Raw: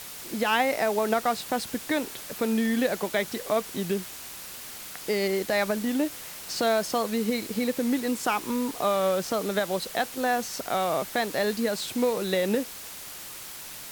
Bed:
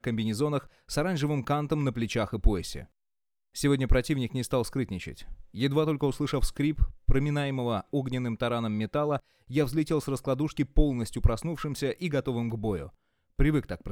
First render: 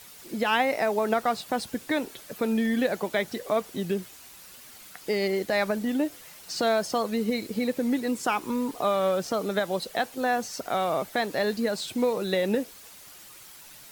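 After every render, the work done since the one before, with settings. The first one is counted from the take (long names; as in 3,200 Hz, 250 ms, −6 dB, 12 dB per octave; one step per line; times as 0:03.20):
broadband denoise 9 dB, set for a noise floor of −41 dBFS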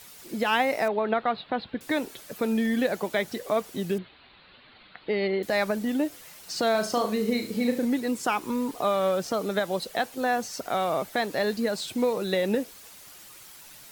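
0:00.88–0:01.81: elliptic low-pass filter 4,000 Hz
0:03.98–0:05.43: Butterworth low-pass 4,300 Hz 96 dB per octave
0:06.71–0:07.85: flutter between parallel walls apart 6.4 metres, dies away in 0.32 s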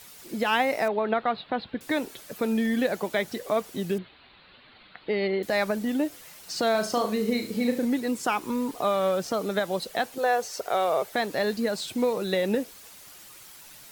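0:10.18–0:11.12: low shelf with overshoot 340 Hz −6.5 dB, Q 3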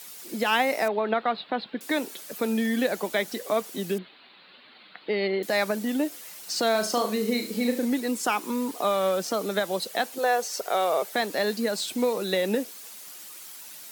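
high-pass filter 180 Hz 24 dB per octave
high-shelf EQ 3,900 Hz +6 dB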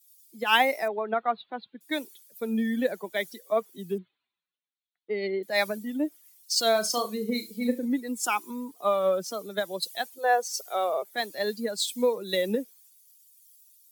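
spectral dynamics exaggerated over time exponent 1.5
multiband upward and downward expander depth 100%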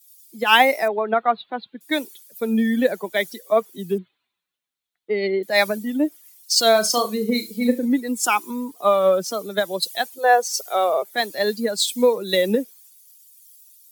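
level +7.5 dB
brickwall limiter −1 dBFS, peak gain reduction 1.5 dB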